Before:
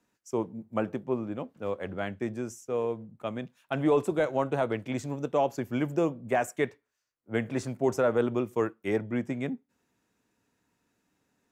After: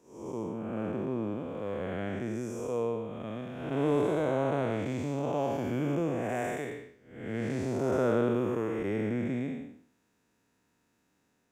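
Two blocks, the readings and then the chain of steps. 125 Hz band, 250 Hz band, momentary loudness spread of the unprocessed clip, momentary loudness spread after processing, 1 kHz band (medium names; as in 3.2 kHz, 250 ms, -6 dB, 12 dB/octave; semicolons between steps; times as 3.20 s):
+1.5 dB, -0.5 dB, 10 LU, 11 LU, -3.0 dB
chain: spectral blur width 314 ms; trim +3 dB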